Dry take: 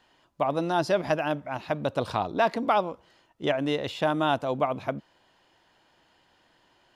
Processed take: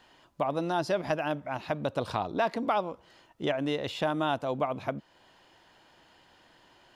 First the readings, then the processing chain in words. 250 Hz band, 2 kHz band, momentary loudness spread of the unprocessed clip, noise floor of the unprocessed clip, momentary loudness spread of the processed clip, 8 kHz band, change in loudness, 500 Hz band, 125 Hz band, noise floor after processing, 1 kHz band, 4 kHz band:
-3.0 dB, -3.5 dB, 8 LU, -65 dBFS, 6 LU, n/a, -3.5 dB, -3.5 dB, -3.0 dB, -62 dBFS, -4.0 dB, -3.0 dB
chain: compressor 1.5:1, threshold -43 dBFS, peak gain reduction 9 dB; gain +4 dB

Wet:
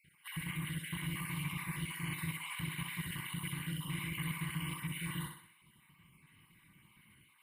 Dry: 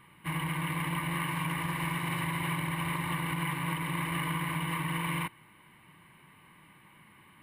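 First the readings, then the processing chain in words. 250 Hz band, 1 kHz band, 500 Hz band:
-7.0 dB, -15.0 dB, -14.0 dB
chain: random spectral dropouts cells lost 39%; passive tone stack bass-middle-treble 6-0-2; notch 1800 Hz, Q 22; on a send: thinning echo 63 ms, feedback 49%, high-pass 210 Hz, level -5 dB; on the sum: gain +12.5 dB

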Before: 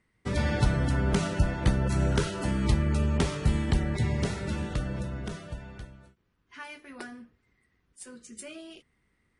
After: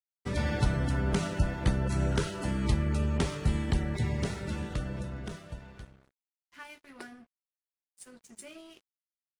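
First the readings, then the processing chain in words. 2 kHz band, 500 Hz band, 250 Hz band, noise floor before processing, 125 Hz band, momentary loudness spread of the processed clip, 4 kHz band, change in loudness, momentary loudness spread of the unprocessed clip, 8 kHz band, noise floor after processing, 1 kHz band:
-3.0 dB, -3.0 dB, -3.0 dB, -74 dBFS, -3.0 dB, 19 LU, -3.0 dB, -3.0 dB, 18 LU, -3.0 dB, under -85 dBFS, -3.0 dB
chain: crossover distortion -52.5 dBFS; gain -2.5 dB

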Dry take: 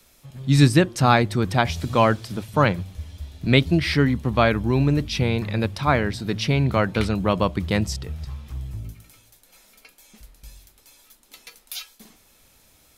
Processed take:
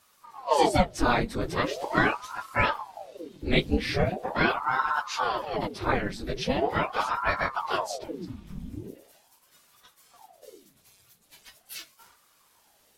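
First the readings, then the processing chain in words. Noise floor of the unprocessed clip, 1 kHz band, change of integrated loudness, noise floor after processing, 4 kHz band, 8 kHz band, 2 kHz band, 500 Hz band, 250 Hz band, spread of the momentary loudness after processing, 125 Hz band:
-57 dBFS, -1.5 dB, -6.5 dB, -64 dBFS, -6.0 dB, -6.0 dB, -2.0 dB, -5.0 dB, -9.5 dB, 17 LU, -14.0 dB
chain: phase scrambler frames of 50 ms; ring modulator with a swept carrier 650 Hz, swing 85%, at 0.41 Hz; gain -3.5 dB

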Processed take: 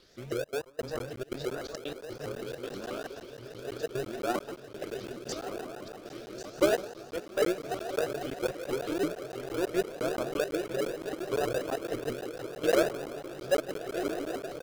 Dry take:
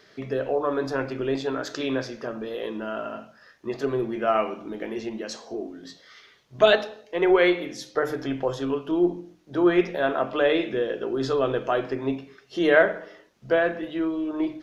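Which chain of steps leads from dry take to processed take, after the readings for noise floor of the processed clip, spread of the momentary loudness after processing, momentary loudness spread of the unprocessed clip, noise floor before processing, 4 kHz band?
-49 dBFS, 12 LU, 15 LU, -56 dBFS, -7.0 dB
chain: graphic EQ 250/500/1000/2000 Hz -11/+4/-4/-7 dB; feedback echo 1.089 s, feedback 55%, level -11 dB; step gate "xxxxx.x..xxxxx." 171 bpm -24 dB; treble ducked by the level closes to 1300 Hz, closed at -22.5 dBFS; high shelf 4400 Hz +11 dB; diffused feedback echo 1.381 s, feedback 56%, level -8 dB; in parallel at -3 dB: sample-rate reducer 1000 Hz, jitter 0%; on the sum: crackling interface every 0.17 s, samples 512, zero, from 0.65; shaped vibrato saw up 6.2 Hz, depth 250 cents; gain -7.5 dB

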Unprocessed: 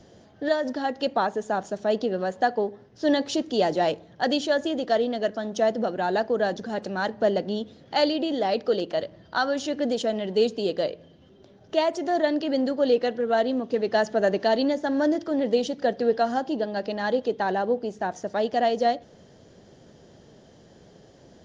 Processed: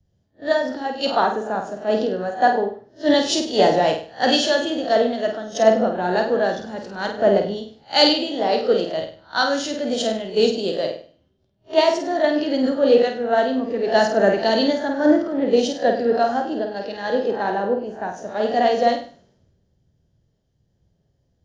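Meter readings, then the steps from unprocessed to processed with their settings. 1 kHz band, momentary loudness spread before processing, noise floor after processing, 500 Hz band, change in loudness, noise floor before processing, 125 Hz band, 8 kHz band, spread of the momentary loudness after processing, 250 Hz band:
+5.0 dB, 6 LU, -67 dBFS, +5.0 dB, +5.5 dB, -53 dBFS, +3.5 dB, n/a, 10 LU, +4.0 dB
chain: spectral swells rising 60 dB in 0.31 s; on a send: flutter echo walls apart 8.6 m, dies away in 0.57 s; on the sum: three-band expander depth 100%; gain +2.5 dB

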